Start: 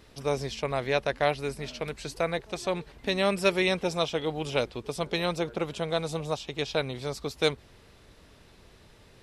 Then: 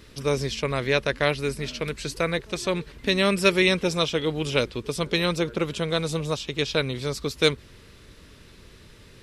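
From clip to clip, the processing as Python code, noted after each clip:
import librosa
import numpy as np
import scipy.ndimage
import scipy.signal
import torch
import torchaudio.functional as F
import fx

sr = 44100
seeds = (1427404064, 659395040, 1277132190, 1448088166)

y = fx.peak_eq(x, sr, hz=750.0, db=-11.5, octaves=0.64)
y = y * 10.0 ** (6.5 / 20.0)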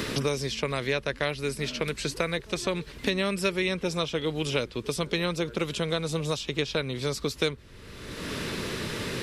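y = fx.band_squash(x, sr, depth_pct=100)
y = y * 10.0 ** (-4.5 / 20.0)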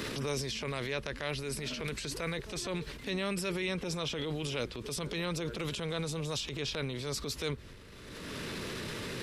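y = fx.transient(x, sr, attack_db=-7, sustain_db=8)
y = y * 10.0 ** (-6.5 / 20.0)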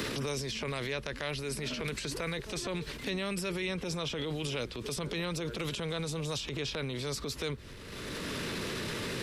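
y = fx.band_squash(x, sr, depth_pct=70)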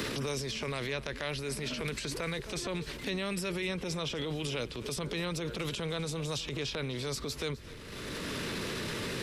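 y = x + 10.0 ** (-18.5 / 20.0) * np.pad(x, (int(255 * sr / 1000.0), 0))[:len(x)]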